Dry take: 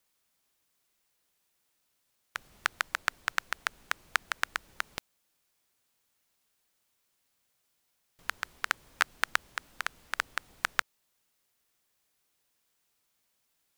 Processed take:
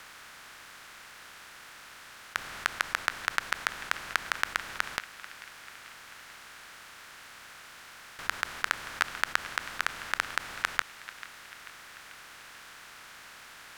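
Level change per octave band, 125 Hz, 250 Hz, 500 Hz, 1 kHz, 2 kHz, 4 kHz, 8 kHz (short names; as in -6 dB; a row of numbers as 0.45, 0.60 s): +7.5, +6.0, +3.0, +2.0, +2.0, +2.5, +2.0 dB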